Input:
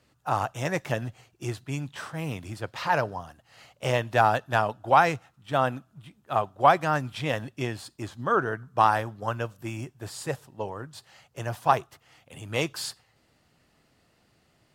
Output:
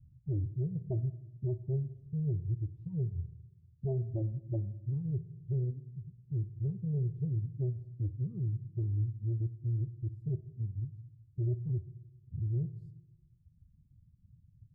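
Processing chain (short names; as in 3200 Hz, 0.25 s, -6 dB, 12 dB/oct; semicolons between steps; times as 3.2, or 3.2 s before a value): vibrato 2.1 Hz 91 cents; inverse Chebyshev low-pass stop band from 590 Hz, stop band 70 dB; in parallel at 0 dB: compressor, threshold -52 dBFS, peak gain reduction 19.5 dB; on the sum: reverb removal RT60 1.6 s; added harmonics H 5 -7 dB, 7 -30 dB, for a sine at -26.5 dBFS; on a send at -11.5 dB: reverb RT60 0.90 s, pre-delay 5 ms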